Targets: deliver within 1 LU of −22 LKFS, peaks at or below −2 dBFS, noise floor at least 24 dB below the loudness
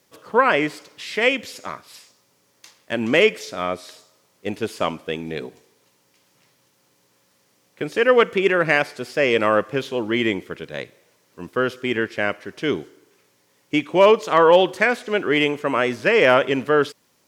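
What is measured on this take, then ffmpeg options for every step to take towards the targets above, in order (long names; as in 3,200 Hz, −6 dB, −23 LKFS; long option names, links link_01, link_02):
integrated loudness −20.0 LKFS; sample peak −3.0 dBFS; target loudness −22.0 LKFS
→ -af "volume=-2dB"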